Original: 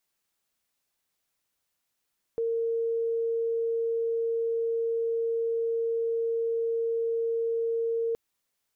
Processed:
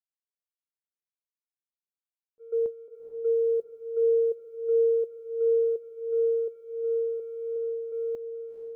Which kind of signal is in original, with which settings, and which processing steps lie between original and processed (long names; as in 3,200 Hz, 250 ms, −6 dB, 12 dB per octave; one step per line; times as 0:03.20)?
tone sine 459 Hz −25 dBFS 5.77 s
delay that plays each chunk backwards 360 ms, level −5 dB
noise gate −26 dBFS, range −41 dB
feedback delay with all-pass diffusion 462 ms, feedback 52%, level −8.5 dB